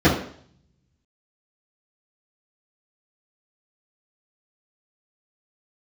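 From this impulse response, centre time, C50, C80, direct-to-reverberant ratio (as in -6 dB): 36 ms, 5.5 dB, 10.5 dB, -12.0 dB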